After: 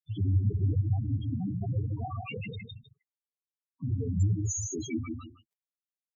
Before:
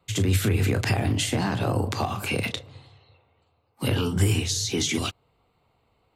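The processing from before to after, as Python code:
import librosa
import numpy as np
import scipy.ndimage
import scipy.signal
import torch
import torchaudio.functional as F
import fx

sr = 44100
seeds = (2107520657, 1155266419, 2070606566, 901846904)

p1 = fx.high_shelf_res(x, sr, hz=5500.0, db=6.5, q=3.0, at=(3.97, 4.65), fade=0.02)
p2 = p1 + fx.echo_feedback(p1, sr, ms=156, feedback_pct=29, wet_db=-4, dry=0)
p3 = np.where(np.abs(p2) >= 10.0 ** (-40.5 / 20.0), p2, 0.0)
p4 = fx.spec_topn(p3, sr, count=4)
y = F.gain(torch.from_numpy(p4), -4.0).numpy()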